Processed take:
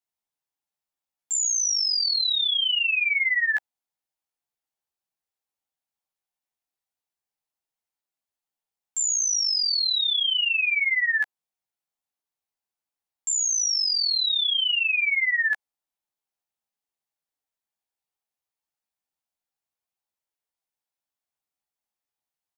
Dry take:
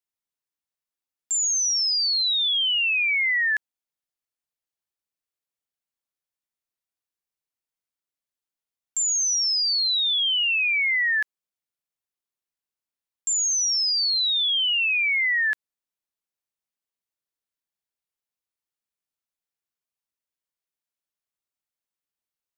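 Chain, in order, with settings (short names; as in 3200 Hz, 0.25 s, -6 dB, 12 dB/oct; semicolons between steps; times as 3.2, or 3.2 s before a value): bell 800 Hz +9 dB 0.48 oct; doubler 14 ms -2.5 dB; gain -3 dB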